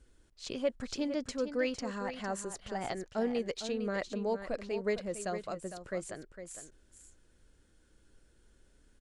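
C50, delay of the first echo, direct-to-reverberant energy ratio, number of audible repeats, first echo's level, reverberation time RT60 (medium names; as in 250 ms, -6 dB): no reverb, 456 ms, no reverb, 1, -10.0 dB, no reverb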